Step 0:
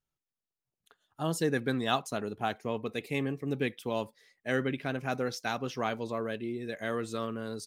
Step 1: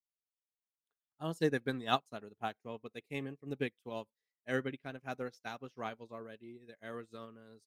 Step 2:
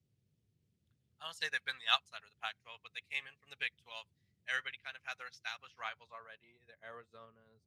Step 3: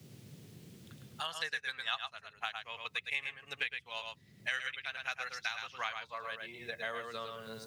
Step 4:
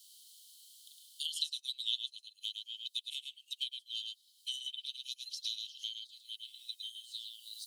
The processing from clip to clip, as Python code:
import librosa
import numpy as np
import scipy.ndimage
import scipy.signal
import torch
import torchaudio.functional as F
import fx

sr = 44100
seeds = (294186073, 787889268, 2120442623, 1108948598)

y1 = fx.upward_expand(x, sr, threshold_db=-44.0, expansion=2.5)
y2 = fx.filter_sweep_bandpass(y1, sr, from_hz=2400.0, to_hz=250.0, start_s=5.53, end_s=7.63, q=0.73)
y2 = fx.dmg_noise_band(y2, sr, seeds[0], low_hz=83.0, high_hz=340.0, level_db=-71.0)
y2 = fx.tone_stack(y2, sr, knobs='10-0-10')
y2 = y2 * 10.0 ** (10.5 / 20.0)
y3 = fx.rider(y2, sr, range_db=10, speed_s=2.0)
y3 = y3 + 10.0 ** (-6.0 / 20.0) * np.pad(y3, (int(108 * sr / 1000.0), 0))[:len(y3)]
y3 = fx.band_squash(y3, sr, depth_pct=100)
y4 = scipy.signal.sosfilt(scipy.signal.cheby1(6, 6, 3000.0, 'highpass', fs=sr, output='sos'), y3)
y4 = y4 * 10.0 ** (9.5 / 20.0)